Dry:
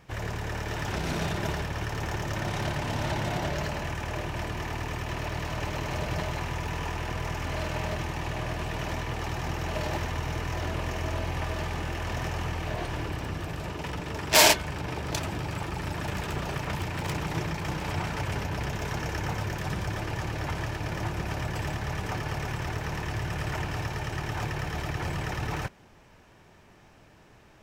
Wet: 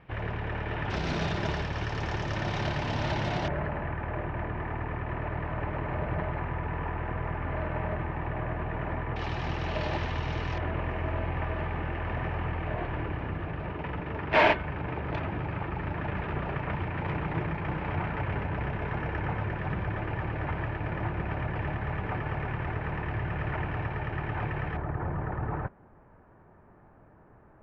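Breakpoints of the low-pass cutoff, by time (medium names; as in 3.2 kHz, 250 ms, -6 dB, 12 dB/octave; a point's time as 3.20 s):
low-pass 24 dB/octave
2.9 kHz
from 0.90 s 5.1 kHz
from 3.48 s 2 kHz
from 9.16 s 4.4 kHz
from 10.58 s 2.4 kHz
from 24.77 s 1.5 kHz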